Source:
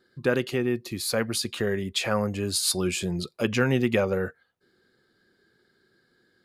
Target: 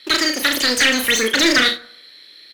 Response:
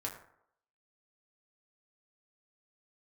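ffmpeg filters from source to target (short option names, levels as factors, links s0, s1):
-filter_complex "[0:a]firequalizer=gain_entry='entry(120,0);entry(370,-30);entry(700,9);entry(3400,-9)':delay=0.05:min_phase=1,acrossover=split=350[s0][s1];[s0]acrusher=bits=3:mode=log:mix=0:aa=0.000001[s2];[s1]acompressor=threshold=0.0398:ratio=6[s3];[s2][s3]amix=inputs=2:normalize=0,asplit=2[s4][s5];[s5]highpass=f=720:p=1,volume=15.8,asoftclip=type=tanh:threshold=0.251[s6];[s4][s6]amix=inputs=2:normalize=0,lowpass=f=1100:p=1,volume=0.501,asetrate=112014,aresample=44100,aecho=1:1:36|75:0.531|0.188,asplit=2[s7][s8];[1:a]atrim=start_sample=2205,adelay=50[s9];[s8][s9]afir=irnorm=-1:irlink=0,volume=0.178[s10];[s7][s10]amix=inputs=2:normalize=0,volume=2.82"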